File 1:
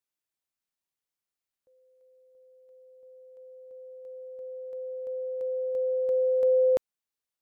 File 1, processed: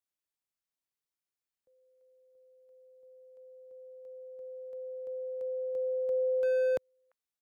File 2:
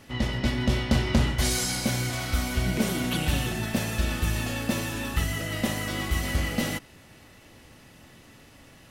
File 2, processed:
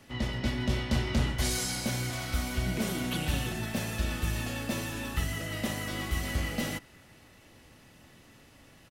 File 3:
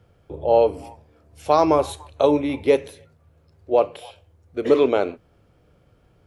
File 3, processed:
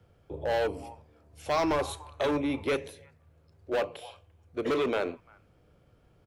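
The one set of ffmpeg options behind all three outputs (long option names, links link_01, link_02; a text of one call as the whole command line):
ffmpeg -i in.wav -filter_complex "[0:a]acrossover=split=120|1300|1700[link_01][link_02][link_03][link_04];[link_02]asoftclip=type=hard:threshold=-21dB[link_05];[link_03]aecho=1:1:345:0.211[link_06];[link_01][link_05][link_06][link_04]amix=inputs=4:normalize=0,volume=-4.5dB" out.wav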